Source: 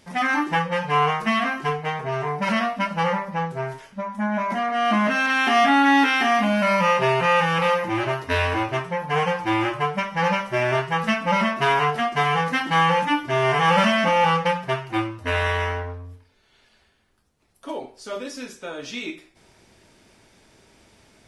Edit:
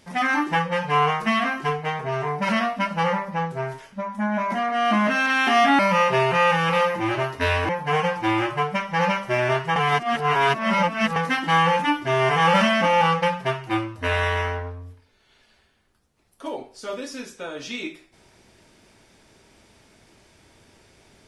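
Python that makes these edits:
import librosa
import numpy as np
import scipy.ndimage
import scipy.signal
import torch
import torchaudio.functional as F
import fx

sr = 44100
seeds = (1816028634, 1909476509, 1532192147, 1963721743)

y = fx.edit(x, sr, fx.cut(start_s=5.79, length_s=0.89),
    fx.cut(start_s=8.58, length_s=0.34),
    fx.reverse_span(start_s=10.99, length_s=1.4), tone=tone)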